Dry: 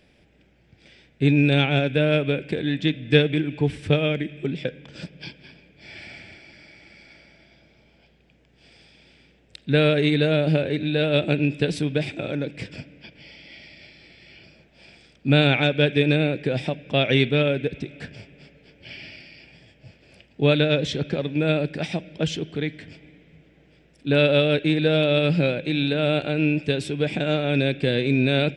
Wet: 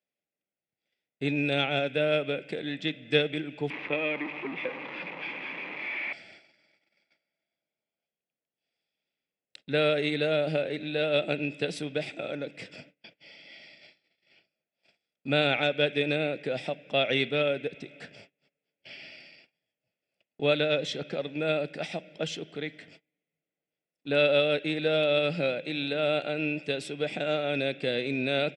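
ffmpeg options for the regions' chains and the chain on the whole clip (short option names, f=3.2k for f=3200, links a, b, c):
-filter_complex "[0:a]asettb=1/sr,asplit=3[a][b][c];[a]atrim=end=3.704[d];[b]atrim=start=3.7:end=6.13,asetpts=PTS-STARTPTS,afade=t=in:d=0.004:c=qsin,afade=t=out:st=2.426:d=0.004:c=qsin,aeval=exprs='val(0)+0.5*0.0631*sgn(val(0))':c=same,highpass=290,equalizer=f=300:t=q:w=4:g=3,equalizer=f=440:t=q:w=4:g=-5,equalizer=f=660:t=q:w=4:g=-8,equalizer=f=990:t=q:w=4:g=7,equalizer=f=1.4k:t=q:w=4:g=-8,equalizer=f=2.3k:t=q:w=4:g=7,lowpass=f=2.5k:w=0.5412,lowpass=f=2.5k:w=1.3066[e];[c]atrim=start=6.126[f];[d][e]acrossfade=d=0.004:c1=hsin:c2=qsin[g];[g][f]acrossfade=d=0.004:c1=qsin:c2=hsin,highpass=260,aecho=1:1:1.5:0.32,agate=range=-27dB:threshold=-47dB:ratio=16:detection=peak,volume=-5dB"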